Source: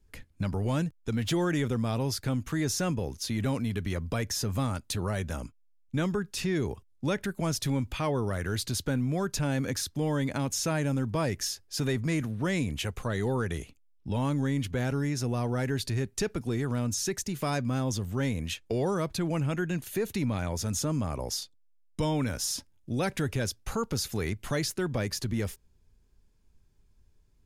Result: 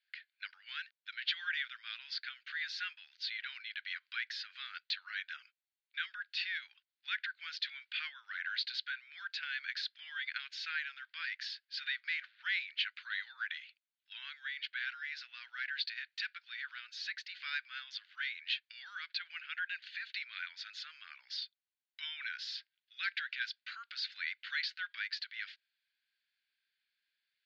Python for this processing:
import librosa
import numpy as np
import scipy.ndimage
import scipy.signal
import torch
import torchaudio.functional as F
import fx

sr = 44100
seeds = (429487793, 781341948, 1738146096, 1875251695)

y = scipy.signal.sosfilt(scipy.signal.cheby1(4, 1.0, [1500.0, 4500.0], 'bandpass', fs=sr, output='sos'), x)
y = y * librosa.db_to_amplitude(2.5)